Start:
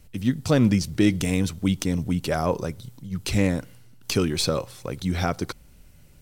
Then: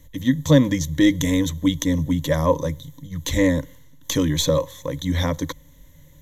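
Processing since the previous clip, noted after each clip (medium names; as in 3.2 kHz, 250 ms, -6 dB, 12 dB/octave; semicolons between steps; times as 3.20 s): rippled EQ curve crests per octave 1.1, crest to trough 17 dB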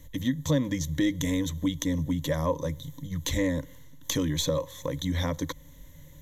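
compression 2:1, threshold -30 dBFS, peak gain reduction 11.5 dB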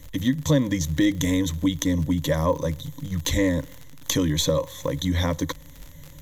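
crackle 67 per s -36 dBFS; trim +5 dB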